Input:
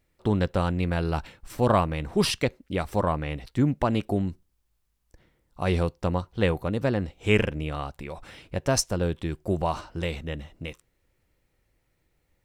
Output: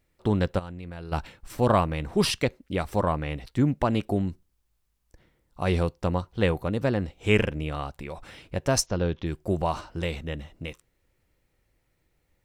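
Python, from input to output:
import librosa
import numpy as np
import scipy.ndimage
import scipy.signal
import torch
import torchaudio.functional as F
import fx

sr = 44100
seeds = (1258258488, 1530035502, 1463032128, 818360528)

y = fx.level_steps(x, sr, step_db=19, at=(0.58, 1.11), fade=0.02)
y = fx.steep_lowpass(y, sr, hz=6700.0, slope=96, at=(8.85, 9.25), fade=0.02)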